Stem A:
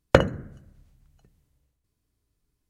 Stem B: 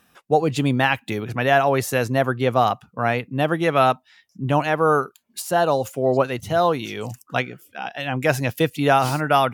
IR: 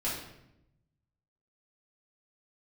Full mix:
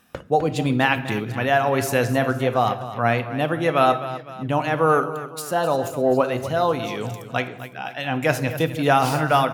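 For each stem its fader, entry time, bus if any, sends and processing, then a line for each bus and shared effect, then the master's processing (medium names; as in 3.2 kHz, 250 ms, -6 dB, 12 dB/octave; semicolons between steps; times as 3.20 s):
-11.0 dB, 0.00 s, no send, echo send -11.5 dB, auto duck -11 dB, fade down 0.25 s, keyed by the second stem
-1.0 dB, 0.00 s, send -14 dB, echo send -12 dB, tremolo 0.99 Hz, depth 29%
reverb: on, RT60 0.85 s, pre-delay 4 ms
echo: feedback delay 255 ms, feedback 46%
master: none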